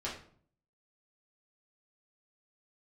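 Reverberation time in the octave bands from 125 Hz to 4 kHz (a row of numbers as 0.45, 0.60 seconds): 0.75, 0.70, 0.55, 0.50, 0.40, 0.35 seconds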